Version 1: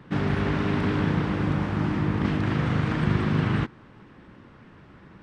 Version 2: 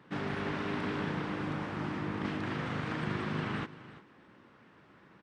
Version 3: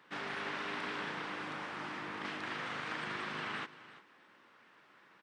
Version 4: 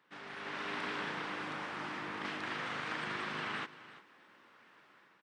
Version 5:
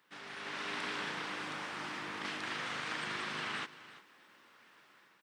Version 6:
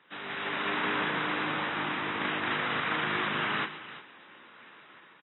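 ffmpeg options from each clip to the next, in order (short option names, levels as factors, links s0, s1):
-af "highpass=f=320:p=1,aecho=1:1:342:0.158,volume=0.501"
-af "highpass=f=1200:p=1,volume=1.26"
-af "dynaudnorm=f=200:g=5:m=2.99,volume=0.376"
-af "highshelf=f=3800:g=11.5,volume=0.794"
-filter_complex "[0:a]aecho=1:1:125:0.15,acrossover=split=2300[s0][s1];[s1]alimiter=level_in=7.08:limit=0.0631:level=0:latency=1:release=73,volume=0.141[s2];[s0][s2]amix=inputs=2:normalize=0,volume=2.82" -ar 22050 -c:a aac -b:a 16k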